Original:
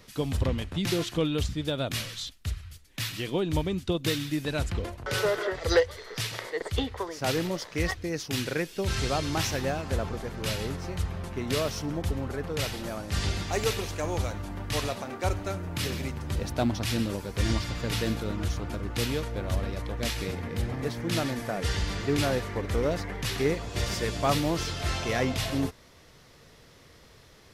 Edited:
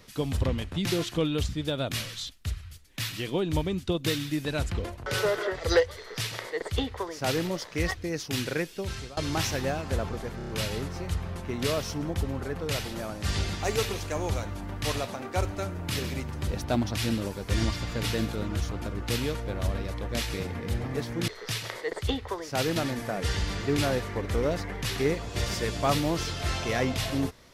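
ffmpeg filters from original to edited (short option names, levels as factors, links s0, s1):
-filter_complex "[0:a]asplit=8[s0][s1][s2][s3][s4][s5][s6][s7];[s0]atrim=end=9.17,asetpts=PTS-STARTPTS,afade=t=out:st=8.61:d=0.56:silence=0.0749894[s8];[s1]atrim=start=9.17:end=10.402,asetpts=PTS-STARTPTS,afade=t=in:d=0.004:c=hsin:silence=0.0749894[s9];[s2]atrim=start=10.368:end=10.402[s10];[s3]atrim=start=10.368:end=10.402[s11];[s4]atrim=start=10.368:end=10.402[s12];[s5]atrim=start=10.368:end=21.162[s13];[s6]atrim=start=5.968:end=7.452[s14];[s7]atrim=start=21.158[s15];[s8][s9]concat=n=2:v=0:a=1[s16];[s16][s10]acrossfade=d=0.004:c1=hsin:c2=hsin[s17];[s17][s11]acrossfade=d=0.004:c1=hsin:c2=hsin[s18];[s18][s12]acrossfade=d=0.004:c1=hsin:c2=hsin[s19];[s19][s13]acrossfade=d=0.004:c1=hsin:c2=hsin[s20];[s20][s14]acrossfade=d=0.004:c1=hsin:c2=hsin[s21];[s21][s15]acrossfade=d=0.004:c1=hsin:c2=hsin"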